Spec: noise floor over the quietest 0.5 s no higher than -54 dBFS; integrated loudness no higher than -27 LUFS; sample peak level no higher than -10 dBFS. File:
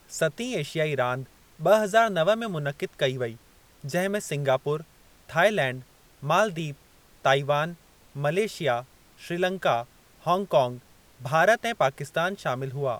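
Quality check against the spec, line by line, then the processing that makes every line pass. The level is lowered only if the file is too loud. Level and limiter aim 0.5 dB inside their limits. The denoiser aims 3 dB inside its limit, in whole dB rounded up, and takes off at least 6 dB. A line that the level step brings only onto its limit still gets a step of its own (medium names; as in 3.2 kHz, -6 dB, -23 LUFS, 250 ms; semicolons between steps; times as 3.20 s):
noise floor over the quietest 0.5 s -56 dBFS: pass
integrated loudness -26.0 LUFS: fail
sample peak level -6.5 dBFS: fail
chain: trim -1.5 dB; peak limiter -10.5 dBFS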